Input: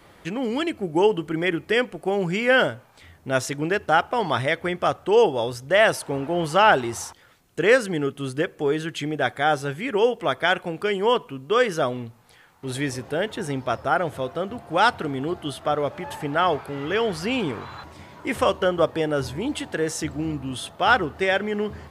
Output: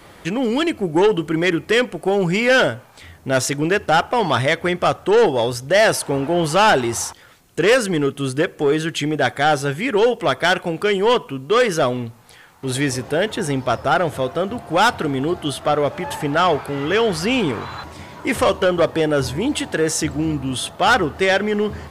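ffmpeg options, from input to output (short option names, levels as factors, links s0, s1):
-af "asoftclip=type=tanh:threshold=0.158,equalizer=f=8300:t=o:w=1.8:g=2.5,volume=2.24"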